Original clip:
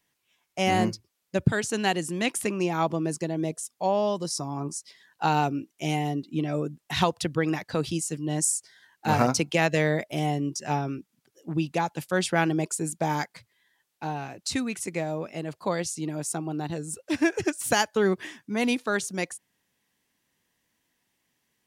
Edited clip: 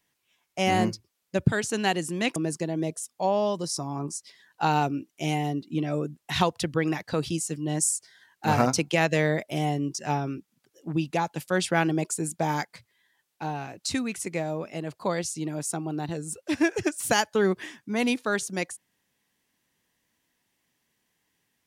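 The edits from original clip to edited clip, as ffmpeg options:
-filter_complex "[0:a]asplit=2[a][b];[a]atrim=end=2.362[c];[b]atrim=start=2.968[d];[c][d]acrossfade=d=0.004:c1=hsin:c2=hsin"

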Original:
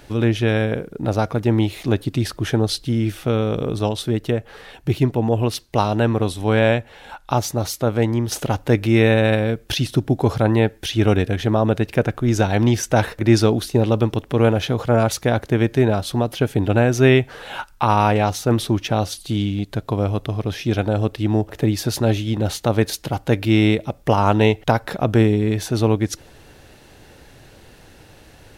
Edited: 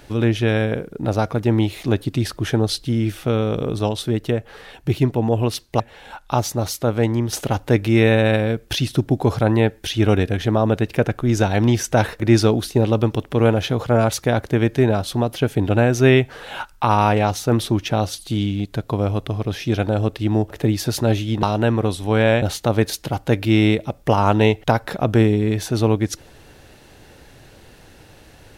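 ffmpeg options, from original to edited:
-filter_complex "[0:a]asplit=4[a][b][c][d];[a]atrim=end=5.802[e];[b]atrim=start=6.788:end=22.422[f];[c]atrim=start=5.798:end=6.792[g];[d]atrim=start=22.418[h];[e][f]acrossfade=d=0.004:c1=hsin:c2=hsin[i];[i][g]acrossfade=d=0.004:c1=hsin:c2=hsin[j];[j][h]acrossfade=d=0.004:c1=hsin:c2=hsin"

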